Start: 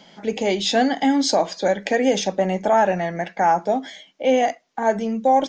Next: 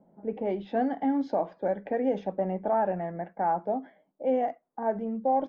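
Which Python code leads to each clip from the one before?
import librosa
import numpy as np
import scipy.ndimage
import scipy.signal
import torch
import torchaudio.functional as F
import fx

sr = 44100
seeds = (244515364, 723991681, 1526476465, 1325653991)

y = fx.env_lowpass(x, sr, base_hz=620.0, full_db=-13.5)
y = scipy.signal.sosfilt(scipy.signal.butter(2, 1100.0, 'lowpass', fs=sr, output='sos'), y)
y = y * librosa.db_to_amplitude(-8.0)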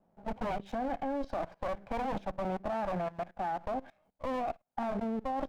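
y = fx.lower_of_two(x, sr, delay_ms=1.3)
y = fx.level_steps(y, sr, step_db=19)
y = y * librosa.db_to_amplitude(5.0)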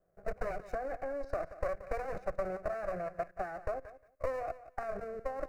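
y = fx.transient(x, sr, attack_db=7, sustain_db=1)
y = fx.fixed_phaser(y, sr, hz=890.0, stages=6)
y = fx.echo_feedback(y, sr, ms=178, feedback_pct=15, wet_db=-15.0)
y = y * librosa.db_to_amplitude(-1.0)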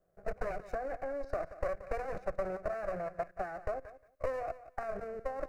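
y = fx.doppler_dist(x, sr, depth_ms=0.24)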